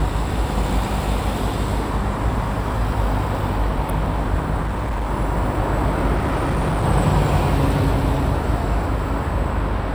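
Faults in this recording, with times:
mains buzz 50 Hz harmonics 31 −25 dBFS
0:04.63–0:05.11: clipping −19.5 dBFS
0:06.16–0:06.85: clipping −16.5 dBFS

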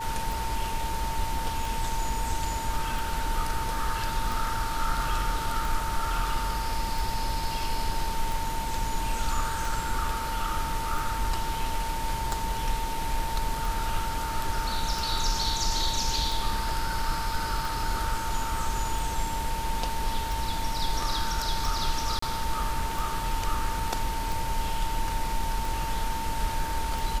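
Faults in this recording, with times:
scratch tick 45 rpm
whistle 900 Hz −32 dBFS
0:22.19–0:22.22: drop-out 34 ms

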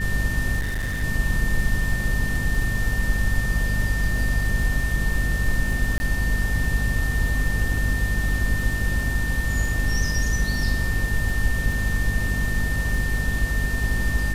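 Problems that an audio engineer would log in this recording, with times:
surface crackle 15 per second −27 dBFS
mains hum 50 Hz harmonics 5 −26 dBFS
whistle 1,800 Hz −28 dBFS
0:00.59–0:01.04: clipping −22.5 dBFS
0:05.98–0:06.00: drop-out 20 ms

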